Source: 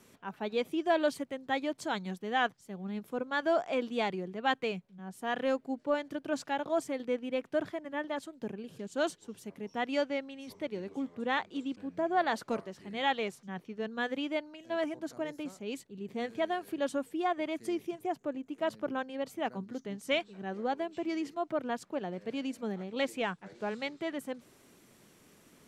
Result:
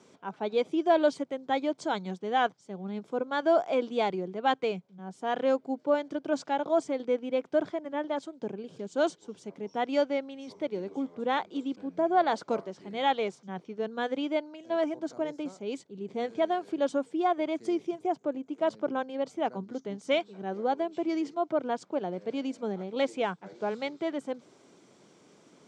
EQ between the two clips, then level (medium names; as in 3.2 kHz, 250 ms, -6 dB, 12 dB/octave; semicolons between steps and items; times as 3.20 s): distance through air 57 m; cabinet simulation 180–8200 Hz, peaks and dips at 230 Hz -4 dB, 1.2 kHz -3 dB, 1.8 kHz -9 dB, 2.7 kHz -7 dB, 4.1 kHz -3 dB; +5.5 dB